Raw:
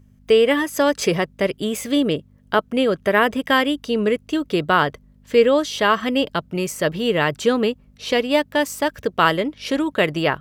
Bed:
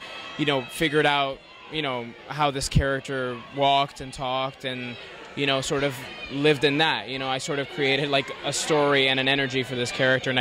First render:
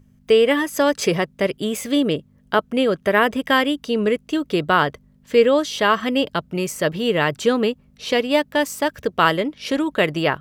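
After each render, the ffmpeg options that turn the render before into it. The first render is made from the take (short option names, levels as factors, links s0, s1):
-af "bandreject=f=50:t=h:w=4,bandreject=f=100:t=h:w=4"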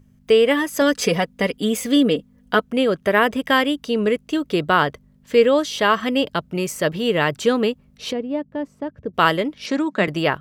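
-filter_complex "[0:a]asettb=1/sr,asplit=3[s0][s1][s2];[s0]atrim=end=0.814[s3];[s1]atrim=start=0.81:end=2.64,asetpts=PTS-STARTPTS,afade=t=in:d=0.004:c=qsin,afade=t=out:st=1.826:d=0.004:c=qsin,aecho=1:1:4.1:0.65,atrim=end_sample=80703[s4];[s2]atrim=start=2.636[s5];[s3][s4]acrossfade=d=0.004:c1=hsin:c2=qsin[s6];[s6][s5]acrossfade=d=0.004:c1=qsin:c2=hsin,asplit=3[s7][s8][s9];[s7]afade=t=out:st=8.11:d=0.02[s10];[s8]bandpass=f=140:t=q:w=0.6,afade=t=in:st=8.11:d=0.02,afade=t=out:st=9.13:d=0.02[s11];[s9]afade=t=in:st=9.13:d=0.02[s12];[s10][s11][s12]amix=inputs=3:normalize=0,asettb=1/sr,asplit=3[s13][s14][s15];[s13]atrim=end=9.664[s16];[s14]atrim=start=9.66:end=10.08,asetpts=PTS-STARTPTS,afade=t=in:d=0.004:c=qsin,afade=t=out:st=0.416:d=0.004:c=qsin,highpass=f=180:w=0.5412,highpass=f=180:w=1.3066,equalizer=f=190:t=q:w=4:g=8,equalizer=f=480:t=q:w=4:g=-6,equalizer=f=3100:t=q:w=4:g=-9,lowpass=f=7800:w=0.5412,lowpass=f=7800:w=1.3066[s17];[s15]atrim=start=10.076[s18];[s16][s17]acrossfade=d=0.004:c1=hsin:c2=qsin[s19];[s19][s18]acrossfade=d=0.004:c1=qsin:c2=hsin"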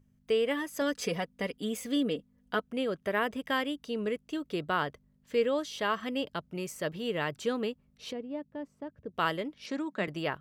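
-af "volume=0.224"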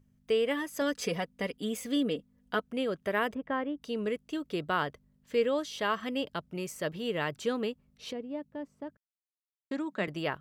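-filter_complex "[0:a]asplit=3[s0][s1][s2];[s0]afade=t=out:st=3.33:d=0.02[s3];[s1]lowpass=1300,afade=t=in:st=3.33:d=0.02,afade=t=out:st=3.8:d=0.02[s4];[s2]afade=t=in:st=3.8:d=0.02[s5];[s3][s4][s5]amix=inputs=3:normalize=0,asplit=3[s6][s7][s8];[s6]atrim=end=8.97,asetpts=PTS-STARTPTS,afade=t=out:st=8.966:d=0.004:c=hsin[s9];[s7]atrim=start=8.97:end=9.71,asetpts=PTS-STARTPTS,volume=0[s10];[s8]atrim=start=9.71,asetpts=PTS-STARTPTS,afade=t=in:d=0.004:c=hsin[s11];[s9][s10][s11]concat=n=3:v=0:a=1"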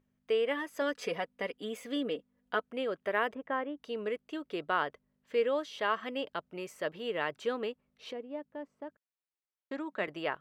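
-af "bass=f=250:g=-14,treble=f=4000:g=-11"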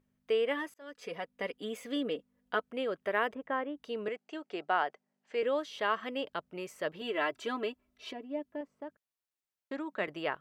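-filter_complex "[0:a]asettb=1/sr,asplit=3[s0][s1][s2];[s0]atrim=end=4.084[s3];[s1]atrim=start=4.08:end=5.43,asetpts=PTS-STARTPTS,afade=t=in:d=0.004:c=qsin,afade=t=out:st=1.346:d=0.004:c=qsin,highpass=f=200:w=0.5412,highpass=f=200:w=1.3066,equalizer=f=270:t=q:w=4:g=-8,equalizer=f=500:t=q:w=4:g=-5,equalizer=f=770:t=q:w=4:g=9,equalizer=f=1100:t=q:w=4:g=-4,equalizer=f=3600:t=q:w=4:g=-5,lowpass=f=8200:w=0.5412,lowpass=f=8200:w=1.3066[s4];[s2]atrim=start=5.426[s5];[s3][s4]acrossfade=d=0.004:c1=hsin:c2=qsin[s6];[s6][s5]acrossfade=d=0.004:c1=qsin:c2=hsin,asettb=1/sr,asplit=3[s7][s8][s9];[s7]atrim=end=7.014[s10];[s8]atrim=start=7.01:end=8.61,asetpts=PTS-STARTPTS,afade=t=in:d=0.004:c=qsin,afade=t=out:st=1.596:d=0.004:c=qsin,aecho=1:1:3:0.81,atrim=end_sample=70560[s11];[s9]atrim=start=8.606[s12];[s10][s11]acrossfade=d=0.004:c1=hsin:c2=qsin[s13];[s13][s12]acrossfade=d=0.004:c1=qsin:c2=hsin,asplit=2[s14][s15];[s14]atrim=end=0.74,asetpts=PTS-STARTPTS,afade=t=out:st=0.736:d=0.004:c=hsin[s16];[s15]atrim=start=0.74,asetpts=PTS-STARTPTS,afade=t=in:d=0.74[s17];[s16][s17]concat=n=2:v=0:a=1"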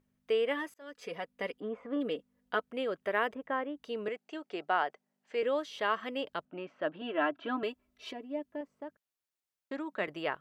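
-filter_complex "[0:a]asplit=3[s0][s1][s2];[s0]afade=t=out:st=1.59:d=0.02[s3];[s1]lowpass=f=1100:t=q:w=2.5,afade=t=in:st=1.59:d=0.02,afade=t=out:st=2:d=0.02[s4];[s2]afade=t=in:st=2:d=0.02[s5];[s3][s4][s5]amix=inputs=3:normalize=0,asettb=1/sr,asplit=3[s6][s7][s8];[s6]atrim=end=6.454[s9];[s7]atrim=start=6.45:end=7.63,asetpts=PTS-STARTPTS,afade=t=in:d=0.004:c=qsin,afade=t=out:st=1.176:d=0.004:c=qsin,highpass=150,equalizer=f=290:t=q:w=4:g=10,equalizer=f=420:t=q:w=4:g=-8,equalizer=f=690:t=q:w=4:g=5,equalizer=f=1500:t=q:w=4:g=5,equalizer=f=2100:t=q:w=4:g=-9,lowpass=f=3100:w=0.5412,lowpass=f=3100:w=1.3066[s10];[s8]atrim=start=7.626[s11];[s9][s10]acrossfade=d=0.004:c1=hsin:c2=qsin[s12];[s12][s11]acrossfade=d=0.004:c1=qsin:c2=hsin"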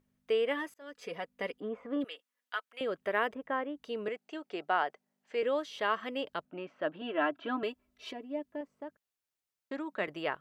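-filter_complex "[0:a]asettb=1/sr,asplit=3[s0][s1][s2];[s0]atrim=end=2.044[s3];[s1]atrim=start=2.04:end=2.81,asetpts=PTS-STARTPTS,afade=t=in:d=0.004:c=qsin,afade=t=out:st=0.766:d=0.004:c=qsin,highpass=1300[s4];[s2]atrim=start=2.806[s5];[s3][s4]acrossfade=d=0.004:c1=hsin:c2=qsin[s6];[s6][s5]acrossfade=d=0.004:c1=qsin:c2=hsin"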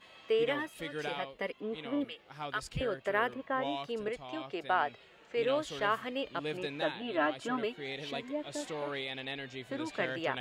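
-filter_complex "[1:a]volume=0.126[s0];[0:a][s0]amix=inputs=2:normalize=0"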